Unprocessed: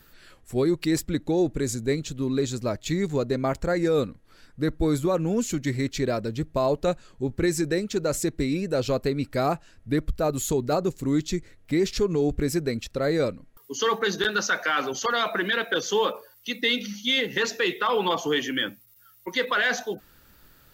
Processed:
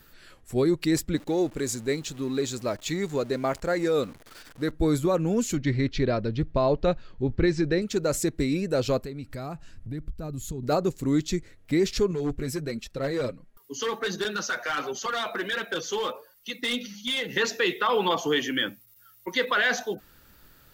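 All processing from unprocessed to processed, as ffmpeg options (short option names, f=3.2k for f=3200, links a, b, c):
-filter_complex "[0:a]asettb=1/sr,asplit=3[a][b][c];[a]atrim=end=1.164[d];[b]atrim=start=1.16:end=4.72,asetpts=PTS-STARTPTS,afade=t=in:d=0.004:c=qsin,afade=t=out:st=3.556:d=0.004:c=qsin,aeval=exprs='val(0)+0.5*0.00794*sgn(val(0))':c=same,lowshelf=f=220:g=-9.5[e];[c]atrim=start=4.716[f];[d][e]acrossfade=d=0.004:c1=hsin:c2=qsin[g];[g][f]acrossfade=d=0.004:c1=qsin:c2=hsin,asettb=1/sr,asplit=3[h][i][j];[h]atrim=end=5.574[k];[i]atrim=start=5.57:end=7.82,asetpts=PTS-STARTPTS,afade=t=in:d=0.004:c=qsin,afade=t=out:st=2.246:d=0.004:c=qsin,lowpass=f=4.8k:w=0.5412,lowpass=f=4.8k:w=1.3066,lowshelf=f=80:g=10[l];[j]atrim=start=7.816[m];[k][l]acrossfade=d=0.004:c1=hsin:c2=qsin[n];[n][m]acrossfade=d=0.004:c1=qsin:c2=hsin,asettb=1/sr,asplit=3[o][p][q];[o]atrim=end=8.994[r];[p]atrim=start=8.99:end=10.63,asetpts=PTS-STARTPTS,afade=t=in:d=0.004:c=qsin,afade=t=out:st=1.636:d=0.004:c=qsin,asubboost=boost=10.5:cutoff=250,acompressor=threshold=-36dB:ratio=3:attack=3.2:release=140:knee=1:detection=peak[s];[q]atrim=start=10.626[t];[r][s]acrossfade=d=0.004:c1=hsin:c2=qsin[u];[u][t]acrossfade=d=0.004:c1=qsin:c2=hsin,asettb=1/sr,asplit=3[v][w][x];[v]atrim=end=12.114[y];[w]atrim=start=12.11:end=17.29,asetpts=PTS-STARTPTS,afade=t=in:d=0.004:c=qsin,afade=t=out:st=5.176:d=0.004:c=qsin,flanger=delay=4.9:depth=3.5:regen=20:speed=1.4:shape=sinusoidal,asoftclip=type=hard:threshold=-23dB[z];[x]atrim=start=17.286[aa];[y][z]acrossfade=d=0.004:c1=hsin:c2=qsin[ab];[ab][aa]acrossfade=d=0.004:c1=qsin:c2=hsin"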